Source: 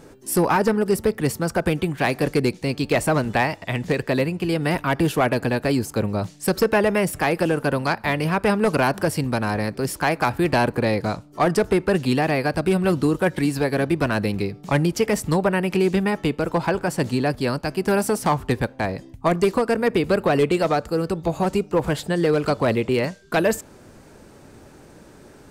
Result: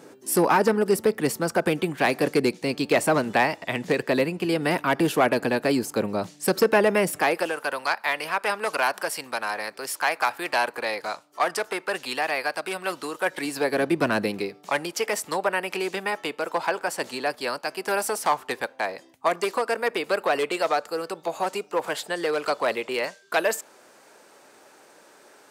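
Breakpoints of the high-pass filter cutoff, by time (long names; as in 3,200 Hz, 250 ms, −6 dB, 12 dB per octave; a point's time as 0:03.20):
0:07.12 230 Hz
0:07.55 780 Hz
0:13.14 780 Hz
0:14.11 190 Hz
0:14.71 600 Hz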